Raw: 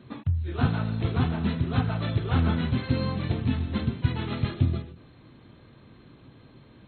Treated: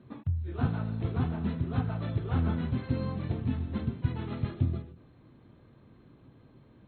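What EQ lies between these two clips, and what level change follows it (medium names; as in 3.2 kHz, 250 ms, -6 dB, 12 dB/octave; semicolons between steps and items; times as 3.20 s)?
treble shelf 2.1 kHz -11.5 dB; -4.5 dB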